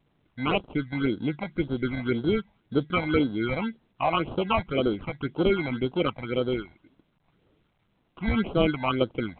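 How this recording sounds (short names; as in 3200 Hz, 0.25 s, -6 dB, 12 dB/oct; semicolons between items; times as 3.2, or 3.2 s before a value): aliases and images of a low sample rate 1800 Hz, jitter 0%; phasing stages 8, 1.9 Hz, lowest notch 380–2200 Hz; A-law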